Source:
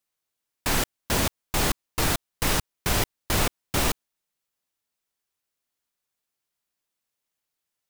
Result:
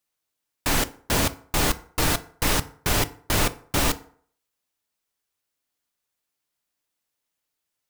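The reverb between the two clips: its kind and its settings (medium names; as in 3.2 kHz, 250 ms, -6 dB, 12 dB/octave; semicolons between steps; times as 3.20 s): FDN reverb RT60 0.54 s, low-frequency decay 0.85×, high-frequency decay 0.6×, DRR 11.5 dB; trim +1.5 dB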